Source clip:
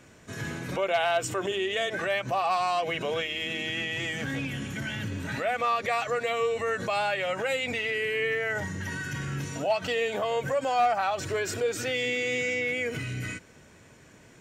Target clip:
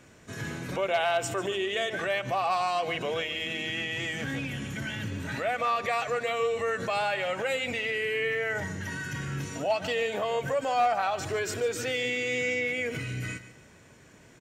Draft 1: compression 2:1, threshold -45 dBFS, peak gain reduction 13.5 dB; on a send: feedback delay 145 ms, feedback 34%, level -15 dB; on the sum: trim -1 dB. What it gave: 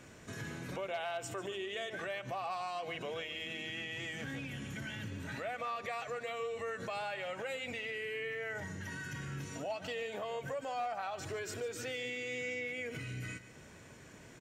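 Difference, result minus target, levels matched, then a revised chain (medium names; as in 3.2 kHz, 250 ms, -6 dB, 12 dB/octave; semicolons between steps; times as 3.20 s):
compression: peak gain reduction +13.5 dB
on a send: feedback delay 145 ms, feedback 34%, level -15 dB; on the sum: trim -1 dB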